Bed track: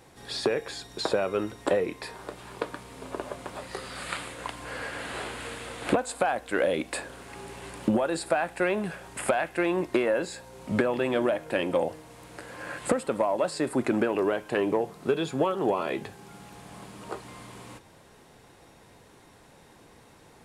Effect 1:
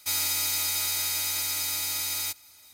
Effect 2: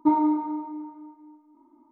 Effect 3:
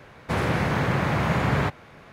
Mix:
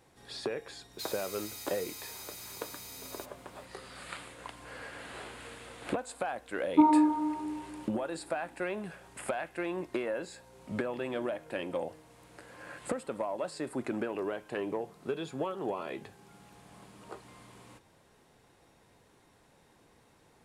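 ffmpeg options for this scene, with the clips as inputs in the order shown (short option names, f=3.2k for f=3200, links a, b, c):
-filter_complex "[0:a]volume=-9dB[a];[1:a]atrim=end=2.73,asetpts=PTS-STARTPTS,volume=-17dB,afade=t=in:d=0.004:c=hsin,afade=t=out:st=2.726:d=0.004:c=hsin,adelay=930[b];[2:a]atrim=end=1.91,asetpts=PTS-STARTPTS,volume=-1dB,afade=t=in:d=0.004:c=hsin,afade=t=out:st=1.906:d=0.004:c=hsin,adelay=6720[c];[a][b][c]amix=inputs=3:normalize=0"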